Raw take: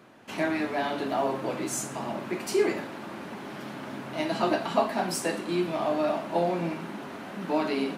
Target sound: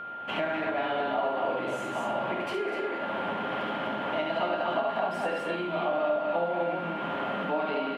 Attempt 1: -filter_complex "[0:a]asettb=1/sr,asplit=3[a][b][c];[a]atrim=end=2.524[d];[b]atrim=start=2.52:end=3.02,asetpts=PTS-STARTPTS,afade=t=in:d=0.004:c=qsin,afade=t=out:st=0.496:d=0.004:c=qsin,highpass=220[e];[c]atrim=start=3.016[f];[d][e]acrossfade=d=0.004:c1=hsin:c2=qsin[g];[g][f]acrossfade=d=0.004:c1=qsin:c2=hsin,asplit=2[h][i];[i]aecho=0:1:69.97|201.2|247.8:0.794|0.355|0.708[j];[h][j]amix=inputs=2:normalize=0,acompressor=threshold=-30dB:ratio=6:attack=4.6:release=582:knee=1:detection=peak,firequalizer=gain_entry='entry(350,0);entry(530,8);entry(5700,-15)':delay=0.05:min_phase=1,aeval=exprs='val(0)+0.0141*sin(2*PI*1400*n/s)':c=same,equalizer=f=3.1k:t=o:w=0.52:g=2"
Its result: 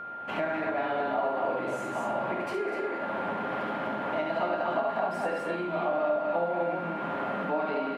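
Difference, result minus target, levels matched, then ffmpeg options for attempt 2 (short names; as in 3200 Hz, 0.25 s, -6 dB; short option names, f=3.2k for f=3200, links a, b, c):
4000 Hz band -7.0 dB
-filter_complex "[0:a]asettb=1/sr,asplit=3[a][b][c];[a]atrim=end=2.524[d];[b]atrim=start=2.52:end=3.02,asetpts=PTS-STARTPTS,afade=t=in:d=0.004:c=qsin,afade=t=out:st=0.496:d=0.004:c=qsin,highpass=220[e];[c]atrim=start=3.016[f];[d][e]acrossfade=d=0.004:c1=hsin:c2=qsin[g];[g][f]acrossfade=d=0.004:c1=qsin:c2=hsin,asplit=2[h][i];[i]aecho=0:1:69.97|201.2|247.8:0.794|0.355|0.708[j];[h][j]amix=inputs=2:normalize=0,acompressor=threshold=-30dB:ratio=6:attack=4.6:release=582:knee=1:detection=peak,firequalizer=gain_entry='entry(350,0);entry(530,8);entry(5700,-15)':delay=0.05:min_phase=1,aeval=exprs='val(0)+0.0141*sin(2*PI*1400*n/s)':c=same,equalizer=f=3.1k:t=o:w=0.52:g=11"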